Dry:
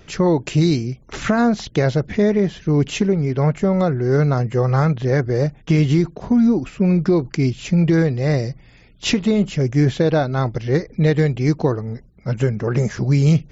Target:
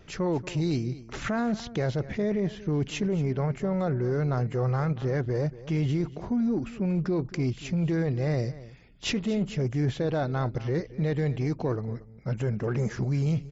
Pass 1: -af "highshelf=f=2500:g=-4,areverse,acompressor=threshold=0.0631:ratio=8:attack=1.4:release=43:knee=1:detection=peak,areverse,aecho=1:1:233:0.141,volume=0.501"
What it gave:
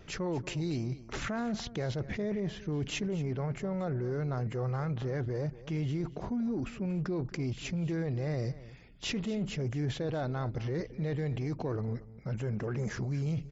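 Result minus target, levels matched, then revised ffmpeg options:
compression: peak gain reduction +6.5 dB
-af "highshelf=f=2500:g=-4,areverse,acompressor=threshold=0.15:ratio=8:attack=1.4:release=43:knee=1:detection=peak,areverse,aecho=1:1:233:0.141,volume=0.501"

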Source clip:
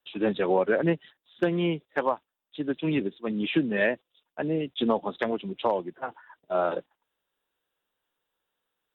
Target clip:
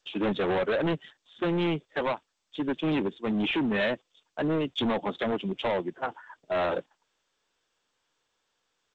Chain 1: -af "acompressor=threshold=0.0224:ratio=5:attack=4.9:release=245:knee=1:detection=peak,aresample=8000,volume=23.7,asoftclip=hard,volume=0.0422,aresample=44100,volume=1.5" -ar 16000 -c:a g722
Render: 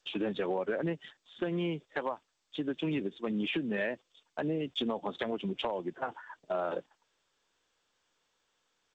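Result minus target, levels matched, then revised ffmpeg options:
compression: peak gain reduction +14.5 dB
-af "aresample=8000,volume=23.7,asoftclip=hard,volume=0.0422,aresample=44100,volume=1.5" -ar 16000 -c:a g722

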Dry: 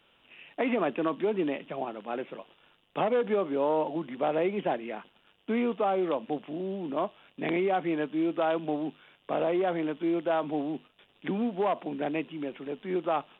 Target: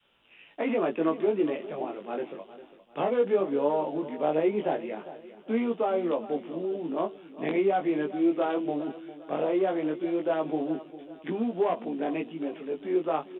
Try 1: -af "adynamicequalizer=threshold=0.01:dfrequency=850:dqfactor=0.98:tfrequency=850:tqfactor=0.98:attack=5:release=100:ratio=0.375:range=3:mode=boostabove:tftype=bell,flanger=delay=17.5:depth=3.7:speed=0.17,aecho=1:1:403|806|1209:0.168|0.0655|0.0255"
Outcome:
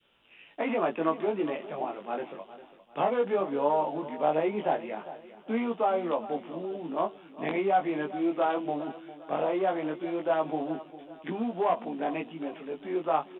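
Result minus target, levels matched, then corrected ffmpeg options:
1 kHz band +5.0 dB
-af "adynamicequalizer=threshold=0.01:dfrequency=400:dqfactor=0.98:tfrequency=400:tqfactor=0.98:attack=5:release=100:ratio=0.375:range=3:mode=boostabove:tftype=bell,flanger=delay=17.5:depth=3.7:speed=0.17,aecho=1:1:403|806|1209:0.168|0.0655|0.0255"

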